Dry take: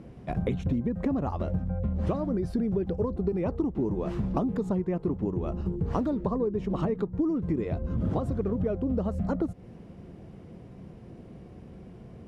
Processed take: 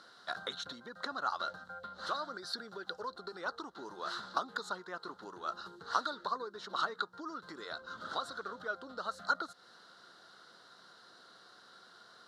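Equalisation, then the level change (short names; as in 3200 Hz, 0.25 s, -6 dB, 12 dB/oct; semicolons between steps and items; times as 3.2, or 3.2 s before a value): double band-pass 2400 Hz, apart 1.5 oct; tilt +4 dB/oct; +14.0 dB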